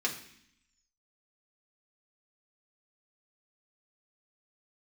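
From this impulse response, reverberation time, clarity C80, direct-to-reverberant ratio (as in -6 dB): 0.65 s, 13.0 dB, -2.0 dB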